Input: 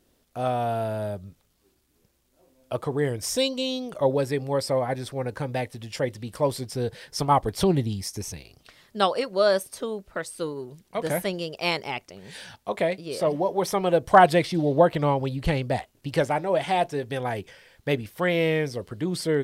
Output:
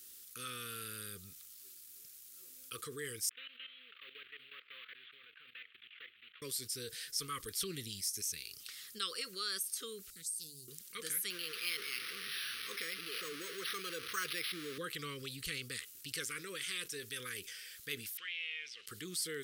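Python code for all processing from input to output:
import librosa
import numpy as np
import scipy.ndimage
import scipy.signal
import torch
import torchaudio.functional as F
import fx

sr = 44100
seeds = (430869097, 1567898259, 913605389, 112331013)

y = fx.chain(x, sr, fx.cvsd(bps=16000),
    fx.differentiator(),
    fx.level_steps(step_db=16), at=(3.29, 6.42))
y = fx.chain(y, sr, fx.cheby1_bandstop(low_hz=130.0, high_hz=6200.0, order=2),
    fx.hum_notches(base_hz=50, count=5),
    fx.doppler_dist(depth_ms=0.21), at=(10.1, 10.68))
y = fx.chain(y, sr, fx.zero_step(step_db=-27.5),
    fx.highpass(hz=360.0, slope=6),
    fx.resample_linear(factor=6), at=(11.3, 14.78))
y = fx.chain(y, sr, fx.law_mismatch(coded='mu'),
    fx.bandpass_q(hz=2700.0, q=3.6),
    fx.air_absorb(metres=72.0), at=(18.17, 18.87))
y = scipy.signal.sosfilt(scipy.signal.ellip(3, 1.0, 40, [470.0, 1200.0], 'bandstop', fs=sr, output='sos'), y)
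y = F.preemphasis(torch.from_numpy(y), 0.97).numpy()
y = fx.env_flatten(y, sr, amount_pct=50)
y = y * librosa.db_to_amplitude(-4.0)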